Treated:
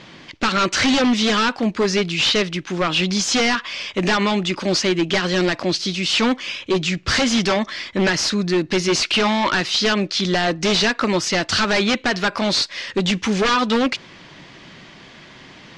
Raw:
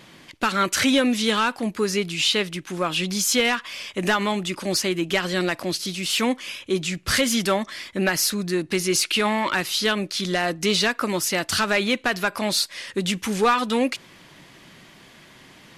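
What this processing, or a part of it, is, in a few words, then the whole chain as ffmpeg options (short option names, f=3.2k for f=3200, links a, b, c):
synthesiser wavefolder: -af "aeval=exprs='0.126*(abs(mod(val(0)/0.126+3,4)-2)-1)':c=same,lowpass=f=6.1k:w=0.5412,lowpass=f=6.1k:w=1.3066,volume=6dB"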